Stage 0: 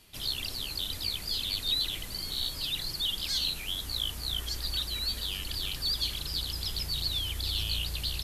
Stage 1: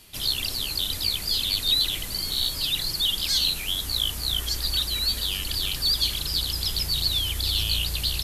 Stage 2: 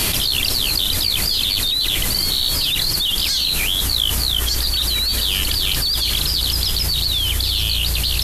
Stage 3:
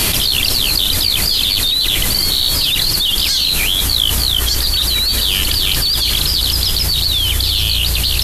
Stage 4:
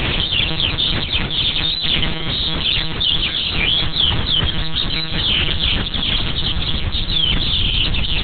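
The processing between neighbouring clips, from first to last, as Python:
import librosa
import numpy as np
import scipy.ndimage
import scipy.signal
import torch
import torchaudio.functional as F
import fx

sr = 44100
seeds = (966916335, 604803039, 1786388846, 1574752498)

y1 = fx.high_shelf(x, sr, hz=5100.0, db=4.5)
y1 = F.gain(torch.from_numpy(y1), 5.5).numpy()
y2 = fx.env_flatten(y1, sr, amount_pct=100)
y3 = y2 + 10.0 ** (-16.5 / 20.0) * np.pad(y2, (int(182 * sr / 1000.0), 0))[:len(y2)]
y3 = F.gain(torch.from_numpy(y3), 4.0).numpy()
y4 = fx.lpc_monotone(y3, sr, seeds[0], pitch_hz=160.0, order=10)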